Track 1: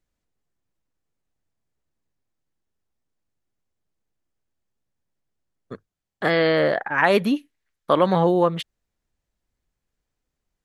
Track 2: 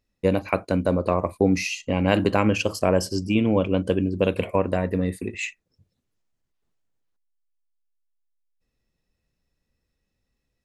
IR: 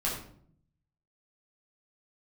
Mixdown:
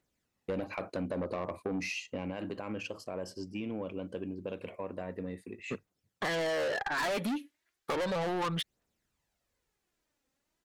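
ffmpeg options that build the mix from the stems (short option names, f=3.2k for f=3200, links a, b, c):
-filter_complex "[0:a]aphaser=in_gain=1:out_gain=1:delay=3.8:decay=0.5:speed=0.34:type=triangular,volume=17.5dB,asoftclip=hard,volume=-17.5dB,volume=2dB[a];[1:a]lowpass=f=3.4k:p=1,alimiter=limit=-12.5dB:level=0:latency=1:release=61,adelay=250,volume=-2.5dB,afade=t=out:st=1.72:d=0.69:silence=0.354813[b];[a][b]amix=inputs=2:normalize=0,highpass=f=220:p=1,asoftclip=type=tanh:threshold=-25dB,acompressor=threshold=-31dB:ratio=6"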